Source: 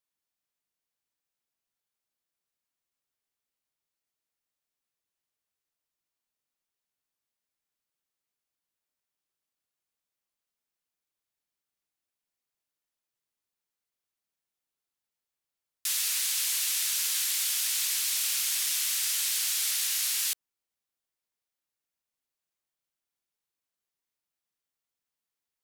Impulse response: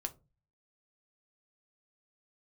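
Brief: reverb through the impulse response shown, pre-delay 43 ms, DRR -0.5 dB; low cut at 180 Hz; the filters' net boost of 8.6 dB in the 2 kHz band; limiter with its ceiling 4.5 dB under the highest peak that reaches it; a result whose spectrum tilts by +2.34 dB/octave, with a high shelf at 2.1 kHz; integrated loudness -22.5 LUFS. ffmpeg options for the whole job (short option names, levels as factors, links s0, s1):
-filter_complex "[0:a]highpass=180,equalizer=f=2000:t=o:g=7.5,highshelf=f=2100:g=5,alimiter=limit=0.178:level=0:latency=1,asplit=2[s0][s1];[1:a]atrim=start_sample=2205,adelay=43[s2];[s1][s2]afir=irnorm=-1:irlink=0,volume=1.19[s3];[s0][s3]amix=inputs=2:normalize=0,volume=0.668"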